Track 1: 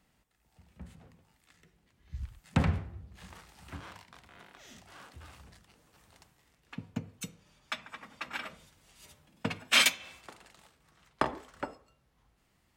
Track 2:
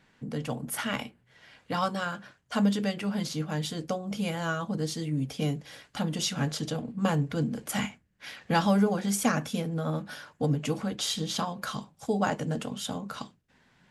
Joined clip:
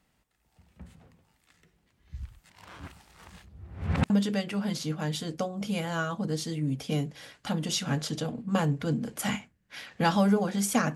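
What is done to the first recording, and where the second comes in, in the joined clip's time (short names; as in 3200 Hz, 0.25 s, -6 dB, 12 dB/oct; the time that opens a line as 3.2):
track 1
2.5–4.1 reverse
4.1 switch to track 2 from 2.6 s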